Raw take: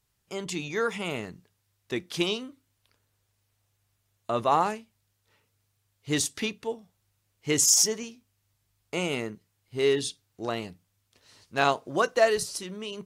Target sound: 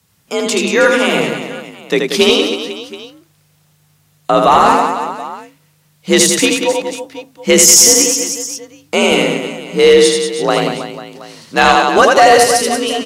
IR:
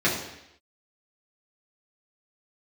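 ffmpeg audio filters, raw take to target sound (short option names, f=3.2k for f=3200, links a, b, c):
-af "aecho=1:1:80|184|319.2|495|723.4:0.631|0.398|0.251|0.158|0.1,afreqshift=51,apsyclip=18dB,volume=-1.5dB"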